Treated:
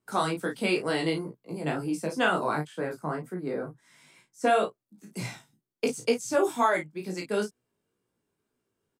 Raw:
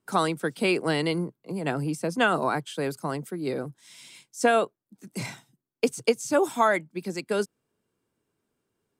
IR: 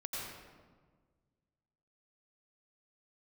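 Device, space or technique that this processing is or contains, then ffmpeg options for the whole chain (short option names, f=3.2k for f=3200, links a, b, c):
double-tracked vocal: -filter_complex "[0:a]asettb=1/sr,asplit=3[a][b][c];[a]atrim=end=2.674[d];[b]atrim=start=2.67:end=4.44,asetpts=PTS-STARTPTS,afade=t=in:d=0.004:c=qsin,afade=t=out:st=1.766:d=0.004:c=qsin,highshelf=f=2.3k:t=q:w=1.5:g=-9[e];[c]atrim=start=4.436[f];[d][e]acrossfade=d=0.004:c1=hsin:c2=qsin[g];[g][f]acrossfade=d=0.004:c1=qsin:c2=hsin,asplit=2[h][i];[i]adelay=33,volume=-6dB[j];[h][j]amix=inputs=2:normalize=0,flanger=delay=16:depth=4:speed=2.1"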